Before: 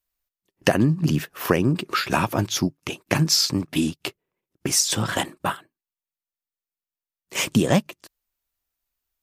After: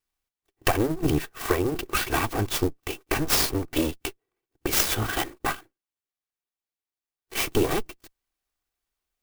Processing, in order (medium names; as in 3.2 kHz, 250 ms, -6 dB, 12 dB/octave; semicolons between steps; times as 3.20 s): comb filter that takes the minimum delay 2.6 ms; sampling jitter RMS 0.038 ms